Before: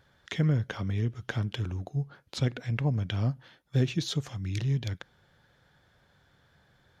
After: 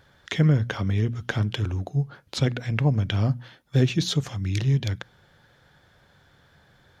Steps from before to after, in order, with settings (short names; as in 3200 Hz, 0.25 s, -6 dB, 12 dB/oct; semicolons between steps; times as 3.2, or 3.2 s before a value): notches 60/120/180/240 Hz; gain +6.5 dB